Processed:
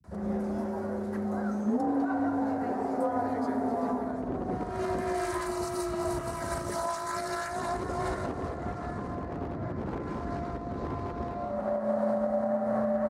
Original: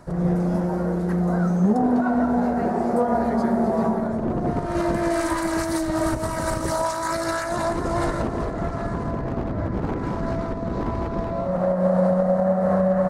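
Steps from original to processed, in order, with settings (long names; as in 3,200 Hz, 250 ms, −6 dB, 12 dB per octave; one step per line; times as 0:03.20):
healed spectral selection 0:05.46–0:06.26, 1,000–3,700 Hz after
frequency shifter +31 Hz
multiband delay without the direct sound lows, highs 40 ms, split 150 Hz
level −8 dB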